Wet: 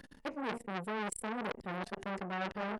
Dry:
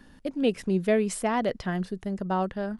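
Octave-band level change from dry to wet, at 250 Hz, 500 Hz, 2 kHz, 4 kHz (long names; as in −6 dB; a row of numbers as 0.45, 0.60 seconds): −13.0, −13.5, −4.0, −7.0 decibels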